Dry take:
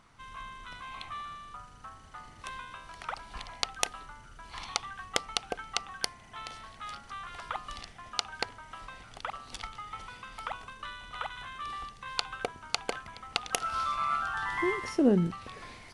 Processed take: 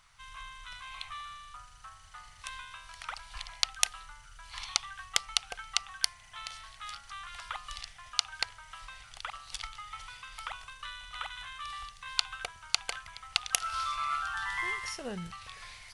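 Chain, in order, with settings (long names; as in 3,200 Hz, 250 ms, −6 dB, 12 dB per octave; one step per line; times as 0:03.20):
guitar amp tone stack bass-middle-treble 10-0-10
level +5 dB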